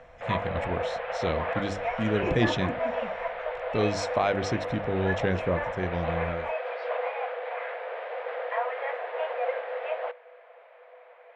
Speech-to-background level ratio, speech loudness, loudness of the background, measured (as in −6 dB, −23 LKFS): 1.5 dB, −30.5 LKFS, −32.0 LKFS